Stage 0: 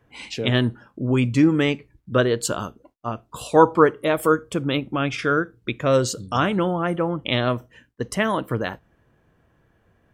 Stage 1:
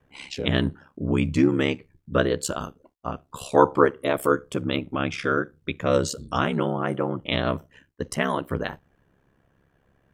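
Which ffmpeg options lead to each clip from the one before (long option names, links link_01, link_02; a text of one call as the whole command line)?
ffmpeg -i in.wav -af "aeval=exprs='val(0)*sin(2*PI*34*n/s)':channel_layout=same" out.wav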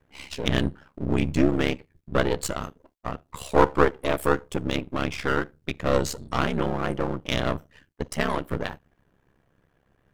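ffmpeg -i in.wav -af "aeval=exprs='if(lt(val(0),0),0.251*val(0),val(0))':channel_layout=same,volume=2dB" out.wav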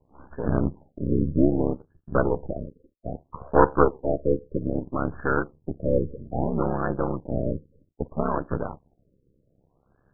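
ffmpeg -i in.wav -af "afftfilt=real='re*lt(b*sr/1024,550*pow(1800/550,0.5+0.5*sin(2*PI*0.62*pts/sr)))':imag='im*lt(b*sr/1024,550*pow(1800/550,0.5+0.5*sin(2*PI*0.62*pts/sr)))':win_size=1024:overlap=0.75,volume=1dB" out.wav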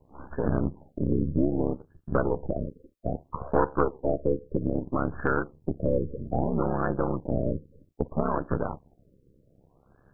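ffmpeg -i in.wav -af "acompressor=threshold=-28dB:ratio=2.5,volume=4.5dB" out.wav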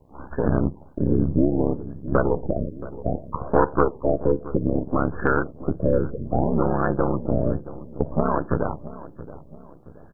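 ffmpeg -i in.wav -filter_complex "[0:a]asplit=2[link_01][link_02];[link_02]adelay=674,lowpass=frequency=910:poles=1,volume=-15dB,asplit=2[link_03][link_04];[link_04]adelay=674,lowpass=frequency=910:poles=1,volume=0.47,asplit=2[link_05][link_06];[link_06]adelay=674,lowpass=frequency=910:poles=1,volume=0.47,asplit=2[link_07][link_08];[link_08]adelay=674,lowpass=frequency=910:poles=1,volume=0.47[link_09];[link_01][link_03][link_05][link_07][link_09]amix=inputs=5:normalize=0,volume=5dB" out.wav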